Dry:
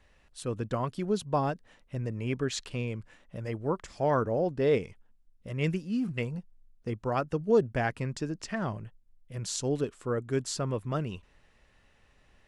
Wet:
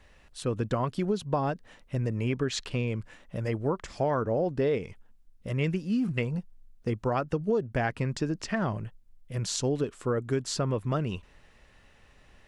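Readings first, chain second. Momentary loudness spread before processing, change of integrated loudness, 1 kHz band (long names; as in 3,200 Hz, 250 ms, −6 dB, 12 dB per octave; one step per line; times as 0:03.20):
15 LU, +1.0 dB, +0.5 dB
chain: dynamic equaliser 10,000 Hz, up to −6 dB, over −56 dBFS, Q 0.7
downward compressor 6 to 1, threshold −29 dBFS, peak gain reduction 11 dB
level +5.5 dB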